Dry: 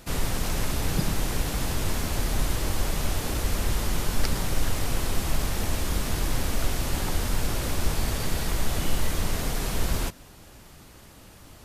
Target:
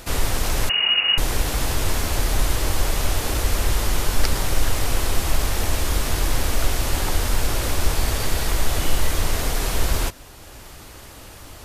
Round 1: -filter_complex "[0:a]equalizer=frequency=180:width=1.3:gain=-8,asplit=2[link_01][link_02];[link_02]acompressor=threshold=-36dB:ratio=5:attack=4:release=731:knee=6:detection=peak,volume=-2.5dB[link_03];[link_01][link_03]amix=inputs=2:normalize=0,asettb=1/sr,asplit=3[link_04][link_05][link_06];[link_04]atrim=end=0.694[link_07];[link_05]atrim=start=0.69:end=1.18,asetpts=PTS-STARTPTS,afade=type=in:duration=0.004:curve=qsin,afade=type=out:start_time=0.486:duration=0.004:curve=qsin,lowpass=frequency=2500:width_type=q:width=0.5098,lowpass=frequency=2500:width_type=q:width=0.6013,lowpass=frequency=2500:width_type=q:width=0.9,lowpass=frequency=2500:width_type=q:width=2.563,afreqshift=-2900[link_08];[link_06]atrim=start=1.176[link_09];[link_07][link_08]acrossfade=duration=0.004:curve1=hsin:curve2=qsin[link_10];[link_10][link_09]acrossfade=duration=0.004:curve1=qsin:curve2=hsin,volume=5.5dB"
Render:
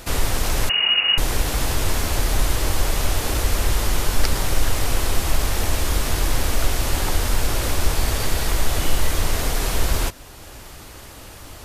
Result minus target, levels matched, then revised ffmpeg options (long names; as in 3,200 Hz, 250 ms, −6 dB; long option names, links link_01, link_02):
downward compressor: peak gain reduction −8.5 dB
-filter_complex "[0:a]equalizer=frequency=180:width=1.3:gain=-8,asplit=2[link_01][link_02];[link_02]acompressor=threshold=-46.5dB:ratio=5:attack=4:release=731:knee=6:detection=peak,volume=-2.5dB[link_03];[link_01][link_03]amix=inputs=2:normalize=0,asettb=1/sr,asplit=3[link_04][link_05][link_06];[link_04]atrim=end=0.694[link_07];[link_05]atrim=start=0.69:end=1.18,asetpts=PTS-STARTPTS,afade=type=in:duration=0.004:curve=qsin,afade=type=out:start_time=0.486:duration=0.004:curve=qsin,lowpass=frequency=2500:width_type=q:width=0.5098,lowpass=frequency=2500:width_type=q:width=0.6013,lowpass=frequency=2500:width_type=q:width=0.9,lowpass=frequency=2500:width_type=q:width=2.563,afreqshift=-2900[link_08];[link_06]atrim=start=1.176[link_09];[link_07][link_08]acrossfade=duration=0.004:curve1=hsin:curve2=qsin[link_10];[link_10][link_09]acrossfade=duration=0.004:curve1=qsin:curve2=hsin,volume=5.5dB"